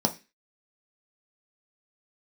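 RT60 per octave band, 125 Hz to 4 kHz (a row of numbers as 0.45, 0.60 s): 0.30, 0.35, 0.25, 0.25, 0.35, 0.35 s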